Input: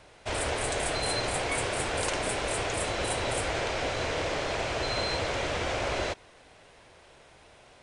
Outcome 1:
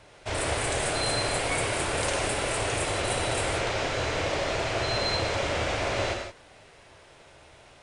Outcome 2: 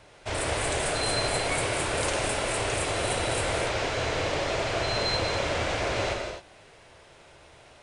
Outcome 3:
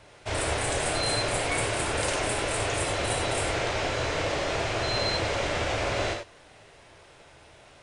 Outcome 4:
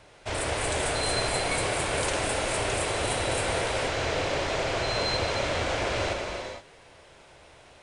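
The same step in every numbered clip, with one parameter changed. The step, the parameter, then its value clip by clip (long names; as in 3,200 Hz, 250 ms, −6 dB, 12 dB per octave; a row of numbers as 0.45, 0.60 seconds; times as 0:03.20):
reverb whose tail is shaped and stops, gate: 200, 290, 120, 500 milliseconds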